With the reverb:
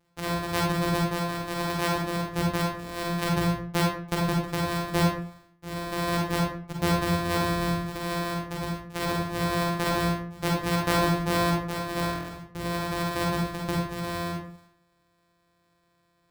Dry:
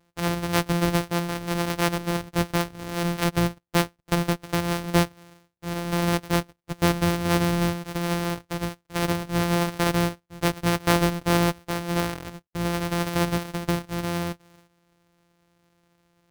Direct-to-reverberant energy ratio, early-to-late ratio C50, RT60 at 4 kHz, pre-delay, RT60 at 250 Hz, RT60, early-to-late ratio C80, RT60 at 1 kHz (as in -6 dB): -2.0 dB, 1.0 dB, 0.35 s, 37 ms, 0.60 s, 0.55 s, 6.0 dB, 0.50 s